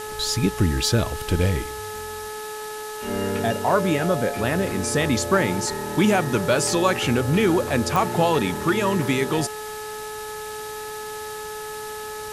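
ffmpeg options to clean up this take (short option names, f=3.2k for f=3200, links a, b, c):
-af "adeclick=t=4,bandreject=f=427.7:t=h:w=4,bandreject=f=855.4:t=h:w=4,bandreject=f=1.2831k:t=h:w=4,bandreject=f=1.7108k:t=h:w=4,bandreject=f=3.8k:w=30,afwtdn=0.013"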